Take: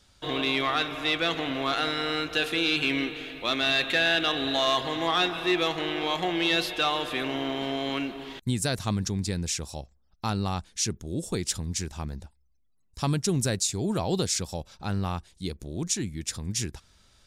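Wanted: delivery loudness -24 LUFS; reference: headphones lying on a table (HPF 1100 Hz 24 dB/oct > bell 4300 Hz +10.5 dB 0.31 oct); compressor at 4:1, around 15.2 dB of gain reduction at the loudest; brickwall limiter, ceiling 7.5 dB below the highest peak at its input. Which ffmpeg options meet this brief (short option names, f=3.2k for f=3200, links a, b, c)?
-af "acompressor=threshold=-40dB:ratio=4,alimiter=level_in=8.5dB:limit=-24dB:level=0:latency=1,volume=-8.5dB,highpass=f=1.1k:w=0.5412,highpass=f=1.1k:w=1.3066,equalizer=f=4.3k:t=o:w=0.31:g=10.5,volume=19dB"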